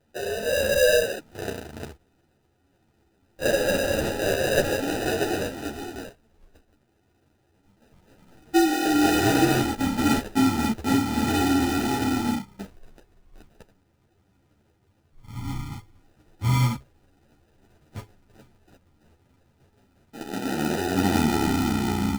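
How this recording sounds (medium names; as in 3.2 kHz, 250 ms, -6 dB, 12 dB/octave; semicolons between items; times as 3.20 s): aliases and images of a low sample rate 1.1 kHz, jitter 0%; a shimmering, thickened sound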